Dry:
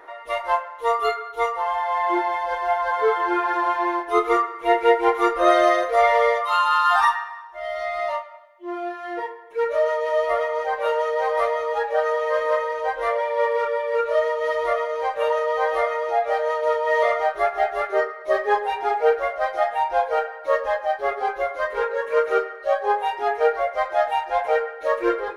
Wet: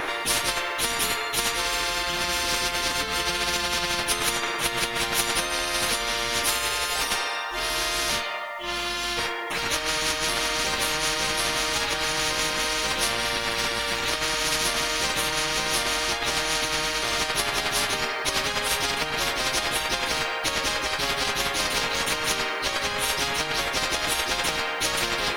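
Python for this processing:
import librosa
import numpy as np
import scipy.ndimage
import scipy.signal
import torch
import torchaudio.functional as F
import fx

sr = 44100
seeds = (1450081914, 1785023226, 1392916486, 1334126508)

y = fx.over_compress(x, sr, threshold_db=-24.0, ratio=-1.0)
y = fx.spectral_comp(y, sr, ratio=10.0)
y = y * librosa.db_to_amplitude(2.0)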